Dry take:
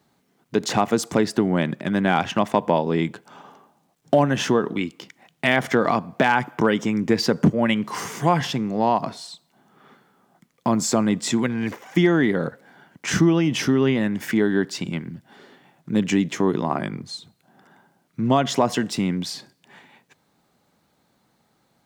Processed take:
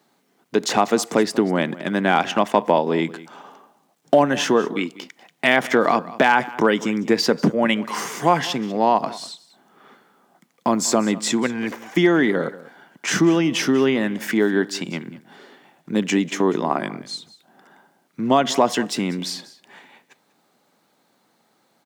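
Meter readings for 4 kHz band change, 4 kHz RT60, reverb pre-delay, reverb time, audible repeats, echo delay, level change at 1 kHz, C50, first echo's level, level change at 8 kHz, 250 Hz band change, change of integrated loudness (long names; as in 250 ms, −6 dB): +3.0 dB, no reverb audible, no reverb audible, no reverb audible, 1, 193 ms, +3.0 dB, no reverb audible, −18.5 dB, +3.0 dB, 0.0 dB, +1.5 dB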